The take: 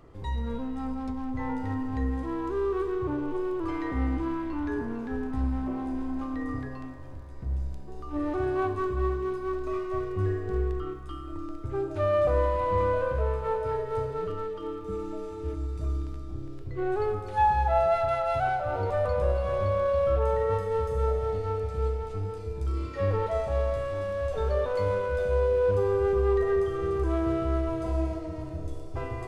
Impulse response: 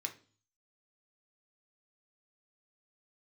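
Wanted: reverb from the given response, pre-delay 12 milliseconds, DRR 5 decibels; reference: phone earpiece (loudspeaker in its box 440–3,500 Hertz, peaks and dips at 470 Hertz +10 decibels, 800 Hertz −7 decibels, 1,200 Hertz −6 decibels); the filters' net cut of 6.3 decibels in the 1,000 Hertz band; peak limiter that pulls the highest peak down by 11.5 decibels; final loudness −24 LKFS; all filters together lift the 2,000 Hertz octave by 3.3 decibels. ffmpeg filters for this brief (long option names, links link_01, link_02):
-filter_complex "[0:a]equalizer=frequency=1000:width_type=o:gain=-3.5,equalizer=frequency=2000:width_type=o:gain=7,alimiter=level_in=1.5dB:limit=-24dB:level=0:latency=1,volume=-1.5dB,asplit=2[link_01][link_02];[1:a]atrim=start_sample=2205,adelay=12[link_03];[link_02][link_03]afir=irnorm=-1:irlink=0,volume=-4.5dB[link_04];[link_01][link_04]amix=inputs=2:normalize=0,highpass=440,equalizer=frequency=470:width_type=q:width=4:gain=10,equalizer=frequency=800:width_type=q:width=4:gain=-7,equalizer=frequency=1200:width_type=q:width=4:gain=-6,lowpass=frequency=3500:width=0.5412,lowpass=frequency=3500:width=1.3066,volume=9dB"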